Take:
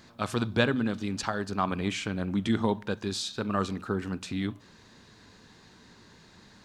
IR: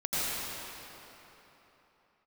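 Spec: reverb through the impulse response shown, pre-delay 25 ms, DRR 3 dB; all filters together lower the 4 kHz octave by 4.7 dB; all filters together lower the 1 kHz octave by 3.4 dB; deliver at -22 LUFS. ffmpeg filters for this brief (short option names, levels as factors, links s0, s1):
-filter_complex "[0:a]equalizer=f=1000:t=o:g=-4,equalizer=f=4000:t=o:g=-5.5,asplit=2[s0][s1];[1:a]atrim=start_sample=2205,adelay=25[s2];[s1][s2]afir=irnorm=-1:irlink=0,volume=0.224[s3];[s0][s3]amix=inputs=2:normalize=0,volume=2.37"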